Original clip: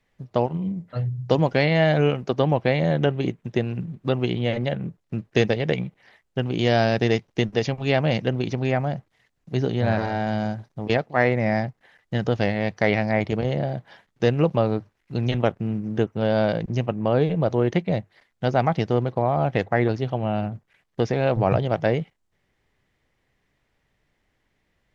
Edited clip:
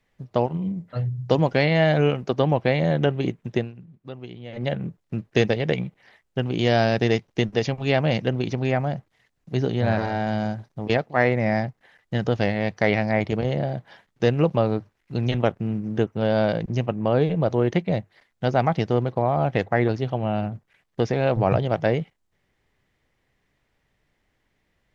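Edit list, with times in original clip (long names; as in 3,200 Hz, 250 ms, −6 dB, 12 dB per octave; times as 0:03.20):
0:03.57–0:04.67: duck −14.5 dB, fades 0.15 s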